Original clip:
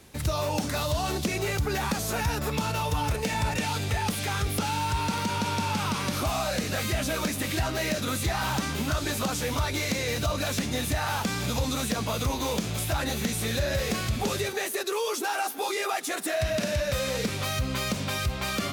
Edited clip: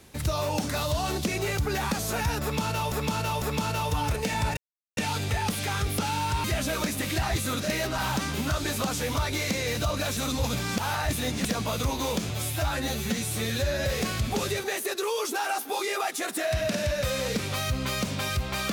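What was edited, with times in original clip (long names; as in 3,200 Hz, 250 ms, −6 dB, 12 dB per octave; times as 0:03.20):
0:02.42–0:02.92: repeat, 3 plays
0:03.57: splice in silence 0.40 s
0:05.04–0:06.85: remove
0:07.64–0:08.39: reverse
0:10.58–0:11.86: reverse
0:12.71–0:13.75: time-stretch 1.5×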